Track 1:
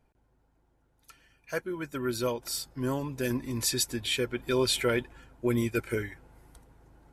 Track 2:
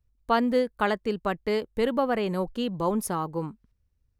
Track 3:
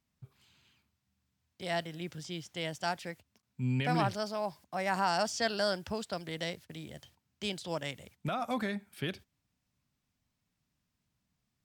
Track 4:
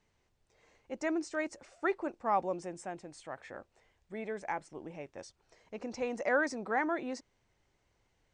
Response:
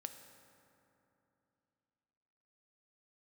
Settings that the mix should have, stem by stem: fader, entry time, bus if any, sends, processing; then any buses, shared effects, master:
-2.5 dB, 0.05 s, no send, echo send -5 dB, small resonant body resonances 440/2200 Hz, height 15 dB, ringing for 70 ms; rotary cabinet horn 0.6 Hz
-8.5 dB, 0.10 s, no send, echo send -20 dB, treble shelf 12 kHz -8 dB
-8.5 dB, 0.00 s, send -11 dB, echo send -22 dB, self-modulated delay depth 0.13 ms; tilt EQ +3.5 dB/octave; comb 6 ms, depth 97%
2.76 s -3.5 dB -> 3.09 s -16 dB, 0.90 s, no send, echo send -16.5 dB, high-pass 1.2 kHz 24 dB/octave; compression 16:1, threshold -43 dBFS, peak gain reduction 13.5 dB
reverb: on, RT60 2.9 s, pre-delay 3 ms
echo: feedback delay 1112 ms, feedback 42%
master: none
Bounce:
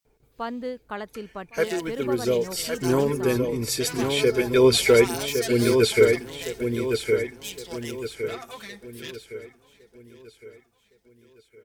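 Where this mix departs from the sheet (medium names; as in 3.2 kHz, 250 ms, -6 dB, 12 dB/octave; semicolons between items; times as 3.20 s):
stem 1 -2.5 dB -> +6.0 dB; stem 4: entry 0.90 s -> 1.40 s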